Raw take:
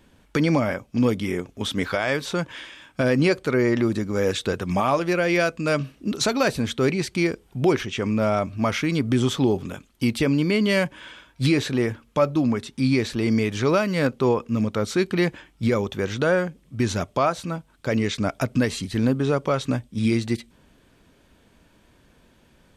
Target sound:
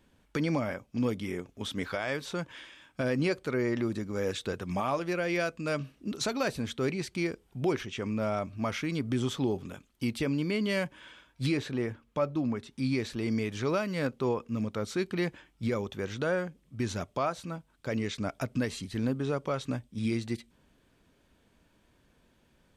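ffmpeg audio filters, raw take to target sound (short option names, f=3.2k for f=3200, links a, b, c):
-filter_complex "[0:a]asettb=1/sr,asplit=3[a][b][c];[a]atrim=end=11.574[d];[b]atrim=start=11.57:end=12.71,asetpts=PTS-STARTPTS,afade=t=in:d=0.004:c=qsin,afade=t=out:st=1.136:d=0.004:c=qsin,highshelf=f=4k:g=-6.5[e];[c]atrim=start=12.706[f];[d][e]acrossfade=d=0.004:c1=hsin:c2=qsin[g];[g][f]acrossfade=d=0.004:c1=qsin:c2=hsin,volume=-9dB"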